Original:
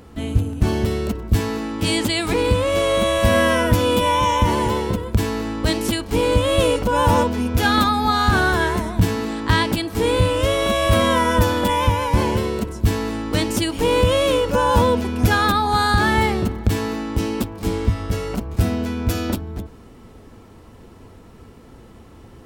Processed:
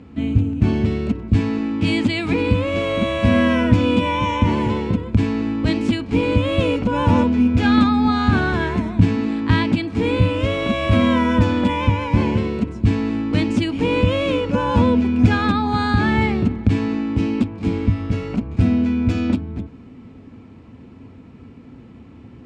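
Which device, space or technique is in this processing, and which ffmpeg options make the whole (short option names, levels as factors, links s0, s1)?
car door speaker: -af "bass=f=250:g=10,treble=f=4000:g=-4,highpass=98,equalizer=f=260:t=q:w=4:g=9,equalizer=f=2400:t=q:w=4:g=8,equalizer=f=5800:t=q:w=4:g=-4,lowpass=f=7000:w=0.5412,lowpass=f=7000:w=1.3066,volume=0.596"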